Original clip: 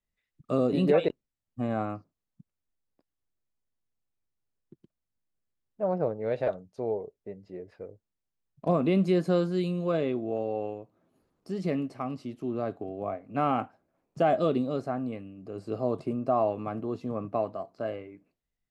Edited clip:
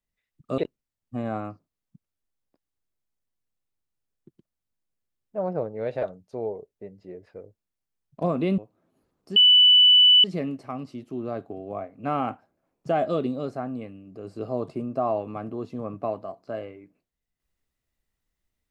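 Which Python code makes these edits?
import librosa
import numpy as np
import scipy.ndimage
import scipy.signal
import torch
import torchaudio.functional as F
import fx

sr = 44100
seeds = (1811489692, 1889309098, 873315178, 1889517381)

y = fx.edit(x, sr, fx.cut(start_s=0.58, length_s=0.45),
    fx.cut(start_s=9.03, length_s=1.74),
    fx.insert_tone(at_s=11.55, length_s=0.88, hz=2980.0, db=-11.5), tone=tone)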